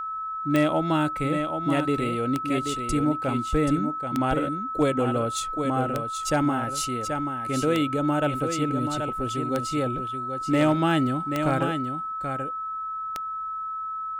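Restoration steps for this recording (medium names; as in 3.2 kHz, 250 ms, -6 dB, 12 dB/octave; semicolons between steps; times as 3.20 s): clip repair -13.5 dBFS; de-click; band-stop 1.3 kHz, Q 30; inverse comb 781 ms -7 dB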